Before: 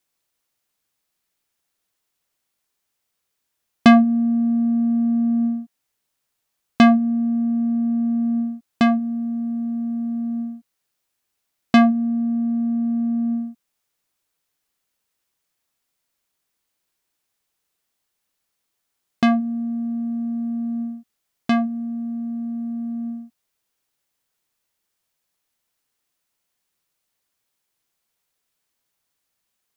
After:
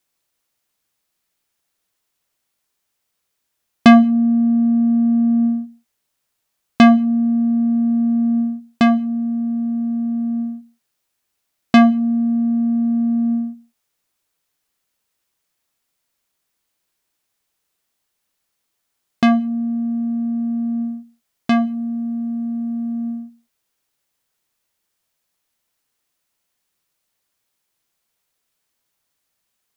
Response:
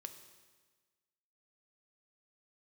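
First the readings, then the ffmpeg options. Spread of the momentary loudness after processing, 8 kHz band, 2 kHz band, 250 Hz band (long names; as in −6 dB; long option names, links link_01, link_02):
13 LU, can't be measured, +2.5 dB, +3.5 dB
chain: -filter_complex "[0:a]asplit=2[link_01][link_02];[1:a]atrim=start_sample=2205,afade=type=out:start_time=0.38:duration=0.01,atrim=end_sample=17199,asetrate=74970,aresample=44100[link_03];[link_02][link_03]afir=irnorm=-1:irlink=0,volume=0dB[link_04];[link_01][link_04]amix=inputs=2:normalize=0"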